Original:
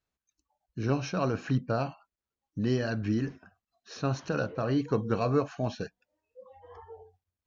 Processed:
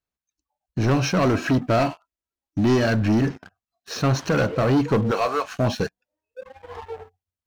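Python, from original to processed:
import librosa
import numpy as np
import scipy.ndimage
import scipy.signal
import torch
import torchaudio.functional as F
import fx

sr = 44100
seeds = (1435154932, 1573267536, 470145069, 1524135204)

y = fx.comb(x, sr, ms=3.1, depth=0.53, at=(1.25, 2.85))
y = fx.highpass(y, sr, hz=fx.line((5.1, 510.0), (5.58, 1300.0)), slope=12, at=(5.1, 5.58), fade=0.02)
y = fx.leveller(y, sr, passes=3)
y = y * librosa.db_to_amplitude(2.0)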